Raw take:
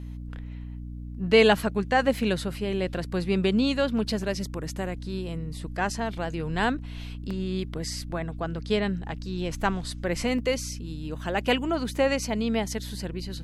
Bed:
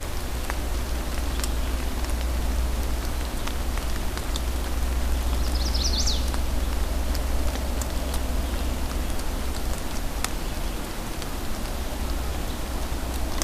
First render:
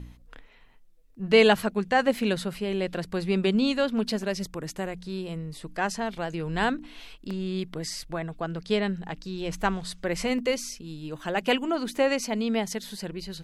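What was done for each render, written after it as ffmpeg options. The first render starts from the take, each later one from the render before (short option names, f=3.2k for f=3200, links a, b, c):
-af "bandreject=f=60:t=h:w=4,bandreject=f=120:t=h:w=4,bandreject=f=180:t=h:w=4,bandreject=f=240:t=h:w=4,bandreject=f=300:t=h:w=4"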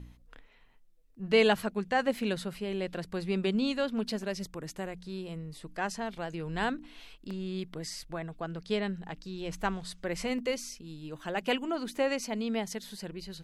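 -af "volume=-5.5dB"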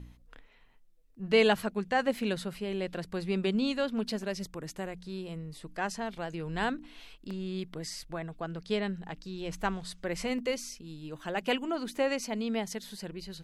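-af anull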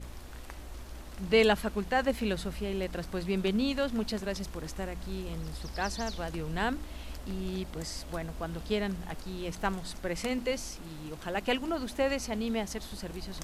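-filter_complex "[1:a]volume=-16.5dB[a];[0:a][a]amix=inputs=2:normalize=0"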